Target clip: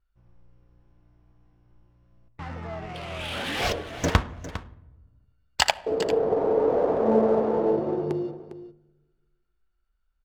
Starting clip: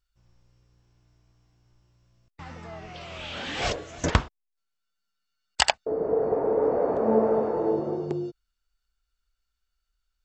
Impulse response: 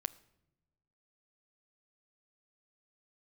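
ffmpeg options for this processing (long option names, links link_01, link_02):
-filter_complex "[0:a]asplit=2[link_01][link_02];[link_02]acompressor=threshold=-34dB:ratio=6,volume=-1dB[link_03];[link_01][link_03]amix=inputs=2:normalize=0[link_04];[1:a]atrim=start_sample=2205,asetrate=33516,aresample=44100[link_05];[link_04][link_05]afir=irnorm=-1:irlink=0,adynamicsmooth=sensitivity=8:basefreq=1900,aecho=1:1:404:0.211,volume=-1dB"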